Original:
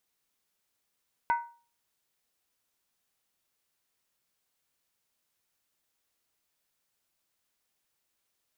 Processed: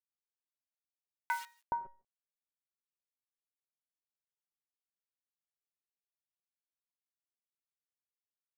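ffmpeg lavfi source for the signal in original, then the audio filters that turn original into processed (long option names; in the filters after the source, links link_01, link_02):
-f lavfi -i "aevalsrc='0.0944*pow(10,-3*t/0.39)*sin(2*PI*941*t)+0.0376*pow(10,-3*t/0.309)*sin(2*PI*1500*t)+0.015*pow(10,-3*t/0.267)*sin(2*PI*2010*t)+0.00596*pow(10,-3*t/0.257)*sin(2*PI*2160.5*t)+0.00237*pow(10,-3*t/0.239)*sin(2*PI*2496.5*t)':duration=0.63:sample_rate=44100"
-filter_complex "[0:a]acrusher=bits=8:dc=4:mix=0:aa=0.000001,acrossover=split=970[link_01][link_02];[link_01]adelay=420[link_03];[link_03][link_02]amix=inputs=2:normalize=0"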